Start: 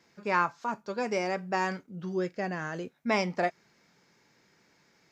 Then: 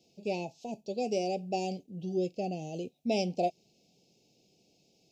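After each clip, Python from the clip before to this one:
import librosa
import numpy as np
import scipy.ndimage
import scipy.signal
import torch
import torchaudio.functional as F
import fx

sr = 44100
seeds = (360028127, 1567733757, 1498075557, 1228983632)

y = scipy.signal.sosfilt(scipy.signal.cheby1(4, 1.0, [760.0, 2600.0], 'bandstop', fs=sr, output='sos'), x)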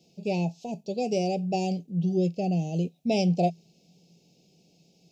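y = fx.peak_eq(x, sr, hz=170.0, db=14.5, octaves=0.23)
y = y * librosa.db_to_amplitude(3.5)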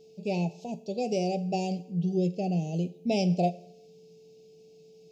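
y = fx.rev_schroeder(x, sr, rt60_s=0.68, comb_ms=30, drr_db=15.5)
y = y + 10.0 ** (-50.0 / 20.0) * np.sin(2.0 * np.pi * 440.0 * np.arange(len(y)) / sr)
y = y * librosa.db_to_amplitude(-2.0)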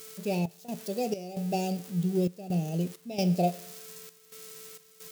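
y = x + 0.5 * 10.0 ** (-31.5 / 20.0) * np.diff(np.sign(x), prepend=np.sign(x[:1]))
y = fx.step_gate(y, sr, bpm=66, pattern='xx.xx.xx', floor_db=-12.0, edge_ms=4.5)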